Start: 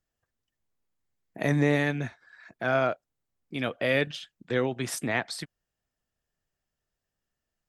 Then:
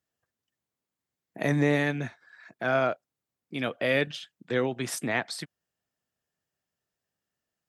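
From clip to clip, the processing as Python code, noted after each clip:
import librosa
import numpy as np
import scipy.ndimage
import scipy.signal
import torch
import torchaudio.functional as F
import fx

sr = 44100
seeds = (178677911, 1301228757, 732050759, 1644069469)

y = scipy.signal.sosfilt(scipy.signal.butter(2, 110.0, 'highpass', fs=sr, output='sos'), x)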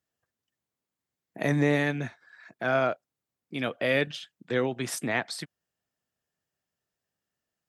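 y = x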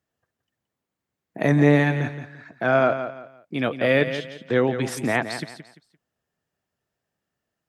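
y = fx.high_shelf(x, sr, hz=2700.0, db=-8.5)
y = fx.echo_feedback(y, sr, ms=172, feedback_pct=29, wet_db=-10.0)
y = F.gain(torch.from_numpy(y), 7.0).numpy()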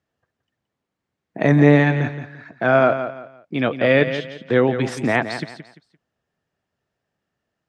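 y = fx.air_absorb(x, sr, metres=80.0)
y = F.gain(torch.from_numpy(y), 4.0).numpy()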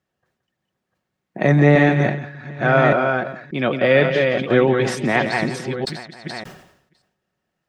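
y = fx.reverse_delay(x, sr, ms=585, wet_db=-4.0)
y = y + 0.36 * np.pad(y, (int(5.4 * sr / 1000.0), 0))[:len(y)]
y = fx.sustainer(y, sr, db_per_s=77.0)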